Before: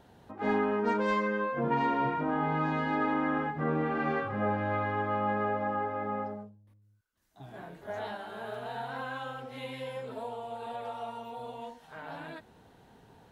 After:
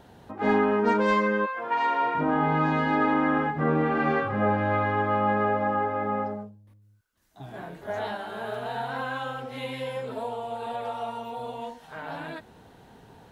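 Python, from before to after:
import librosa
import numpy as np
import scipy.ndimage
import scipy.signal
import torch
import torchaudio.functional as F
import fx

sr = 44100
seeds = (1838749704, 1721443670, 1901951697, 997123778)

y = fx.highpass(x, sr, hz=fx.line((1.45, 1100.0), (2.14, 500.0)), slope=12, at=(1.45, 2.14), fade=0.02)
y = F.gain(torch.from_numpy(y), 6.0).numpy()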